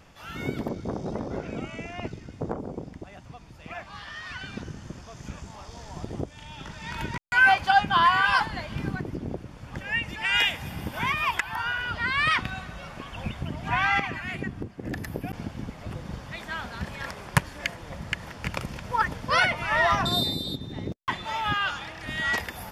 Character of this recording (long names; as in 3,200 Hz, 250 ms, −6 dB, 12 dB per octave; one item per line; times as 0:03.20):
background noise floor −47 dBFS
spectral slope −2.0 dB per octave